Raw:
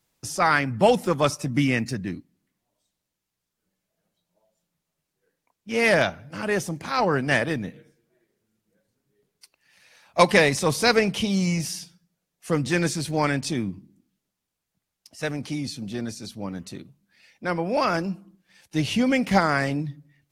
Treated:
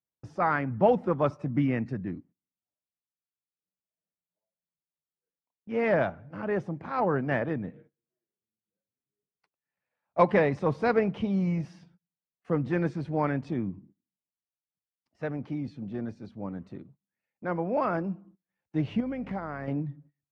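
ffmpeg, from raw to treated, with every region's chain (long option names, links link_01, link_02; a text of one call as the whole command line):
ffmpeg -i in.wav -filter_complex "[0:a]asettb=1/sr,asplit=3[link_01][link_02][link_03];[link_01]atrim=end=19.004[link_04];[link_02]atrim=start=19:end=19.68,asetpts=PTS-STARTPTS,afade=type=in:duration=0.004:curve=qsin,afade=type=out:start_time=0.676:duration=0.004:curve=qsin,acompressor=threshold=-27dB:ratio=4:attack=3.2:release=140:knee=1:detection=peak,aeval=exprs='val(0)+0.00501*(sin(2*PI*50*n/s)+sin(2*PI*2*50*n/s)/2+sin(2*PI*3*50*n/s)/3+sin(2*PI*4*50*n/s)/4+sin(2*PI*5*50*n/s)/5)':channel_layout=same[link_05];[link_03]atrim=start=19.676[link_06];[link_04][link_05]acrossfade=duration=0.004:curve1=hsin:curve2=qsin[link_07];[link_07][link_06]acrossfade=duration=0.004:curve1=qsin:curve2=hsin,highpass=51,agate=range=-20dB:threshold=-50dB:ratio=16:detection=peak,lowpass=1300,volume=-3.5dB" out.wav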